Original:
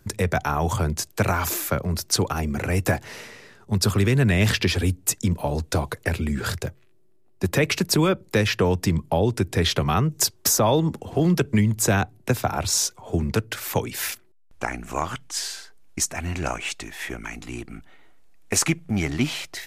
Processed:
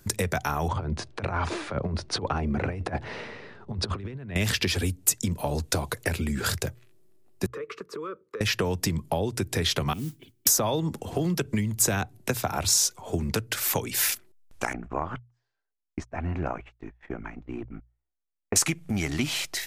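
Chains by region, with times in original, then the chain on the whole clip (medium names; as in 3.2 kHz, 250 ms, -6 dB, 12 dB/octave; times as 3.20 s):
0.68–4.36 s: FFT filter 890 Hz 0 dB, 4.1 kHz -10 dB, 7.7 kHz -28 dB, 14 kHz -19 dB + compressor with a negative ratio -26 dBFS, ratio -0.5 + brick-wall FIR low-pass 10 kHz
7.46–8.41 s: two resonant band-passes 730 Hz, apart 1.4 oct + compression 10:1, threshold -31 dBFS
9.93–10.47 s: cascade formant filter i + modulation noise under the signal 22 dB
14.73–18.56 s: low-pass 1.2 kHz + gate -39 dBFS, range -37 dB
whole clip: compression 4:1, threshold -24 dBFS; treble shelf 3.7 kHz +6.5 dB; hum notches 60/120 Hz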